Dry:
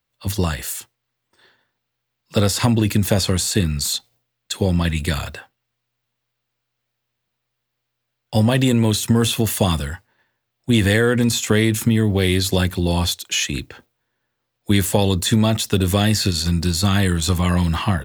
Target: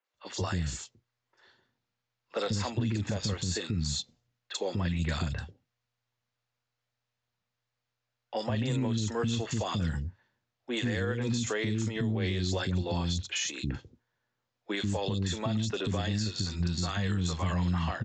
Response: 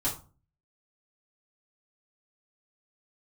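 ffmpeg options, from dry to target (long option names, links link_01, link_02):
-filter_complex "[0:a]aresample=16000,aresample=44100,acrossover=split=340|2900[link_01][link_02][link_03];[link_03]adelay=40[link_04];[link_01]adelay=140[link_05];[link_05][link_02][link_04]amix=inputs=3:normalize=0,alimiter=limit=-16dB:level=0:latency=1:release=163,volume=-5.5dB"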